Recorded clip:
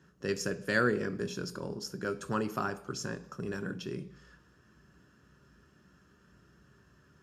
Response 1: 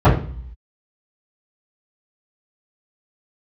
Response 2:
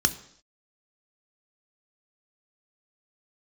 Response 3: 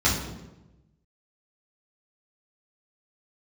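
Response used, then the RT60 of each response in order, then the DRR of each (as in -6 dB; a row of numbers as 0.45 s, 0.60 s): 2; 0.50 s, no single decay rate, 1.0 s; -17.0 dB, 9.5 dB, -8.5 dB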